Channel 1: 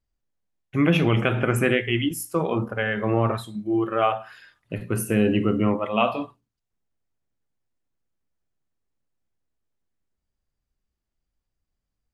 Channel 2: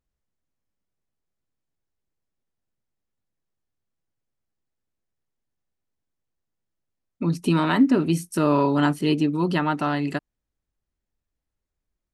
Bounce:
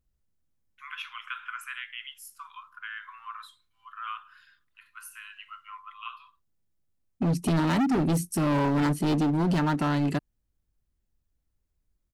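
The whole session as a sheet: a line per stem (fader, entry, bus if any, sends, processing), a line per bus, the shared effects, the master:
−5.0 dB, 0.05 s, no send, Chebyshev high-pass with heavy ripple 1,000 Hz, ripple 6 dB; high-shelf EQ 3,400 Hz −9.5 dB; automatic ducking −11 dB, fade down 1.75 s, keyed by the second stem
−3.0 dB, 0.00 s, no send, low-shelf EQ 260 Hz +11 dB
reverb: not used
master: high-shelf EQ 7,100 Hz +7.5 dB; gain into a clipping stage and back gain 21.5 dB

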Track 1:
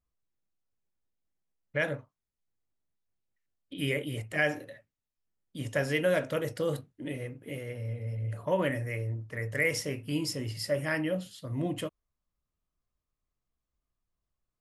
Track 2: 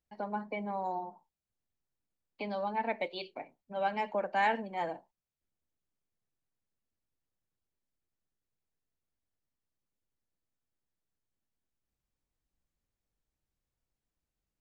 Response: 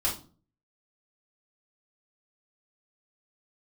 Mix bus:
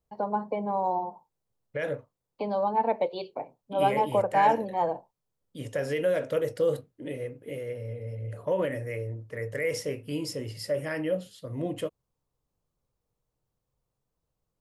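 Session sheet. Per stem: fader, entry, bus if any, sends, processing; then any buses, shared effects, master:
−2.5 dB, 0.00 s, no send, brickwall limiter −21 dBFS, peak gain reduction 6 dB
+0.5 dB, 0.00 s, no send, octave-band graphic EQ 125/1,000/2,000 Hz +12/+9/−9 dB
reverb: not used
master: parametric band 480 Hz +9.5 dB 0.67 octaves

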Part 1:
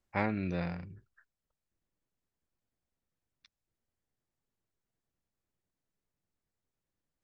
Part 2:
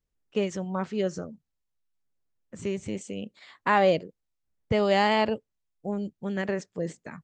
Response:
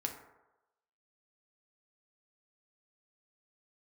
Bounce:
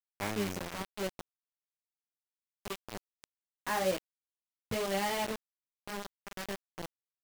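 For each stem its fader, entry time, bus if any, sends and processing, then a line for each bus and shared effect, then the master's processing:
−4.0 dB, 0.05 s, no send, every ending faded ahead of time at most 140 dB per second; automatic ducking −6 dB, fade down 1.20 s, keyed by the second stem
−8.0 dB, 0.00 s, no send, chorus effect 1 Hz, delay 15.5 ms, depth 4.4 ms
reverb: not used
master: bit reduction 6 bits

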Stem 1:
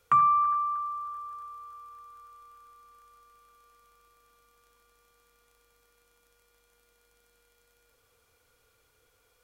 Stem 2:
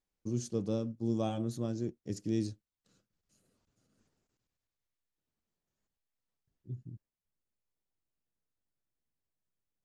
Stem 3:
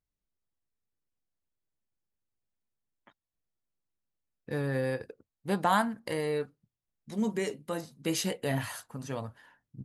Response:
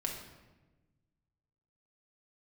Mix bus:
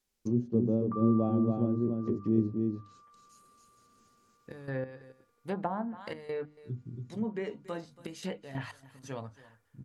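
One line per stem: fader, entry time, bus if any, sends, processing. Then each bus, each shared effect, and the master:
−8.0 dB, 0.80 s, no send, no echo send, elliptic low-pass filter 2,200 Hz
+3.0 dB, 0.00 s, no send, echo send −4 dB, high-shelf EQ 2,300 Hz +8.5 dB; hollow resonant body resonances 240/390 Hz, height 6 dB, ringing for 60 ms
−3.5 dB, 0.00 s, no send, echo send −19.5 dB, gate pattern "xx.x.x..xxxx" 93 BPM −12 dB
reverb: not used
echo: single-tap delay 280 ms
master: treble cut that deepens with the level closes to 620 Hz, closed at −26 dBFS; mains-hum notches 50/100/150/200/250/300 Hz

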